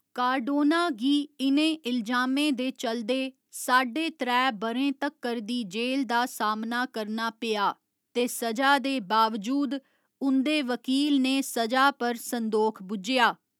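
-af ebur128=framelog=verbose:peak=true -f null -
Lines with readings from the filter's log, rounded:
Integrated loudness:
  I:         -26.6 LUFS
  Threshold: -36.7 LUFS
Loudness range:
  LRA:         3.0 LU
  Threshold: -47.0 LUFS
  LRA low:   -28.7 LUFS
  LRA high:  -25.8 LUFS
True peak:
  Peak:       -7.9 dBFS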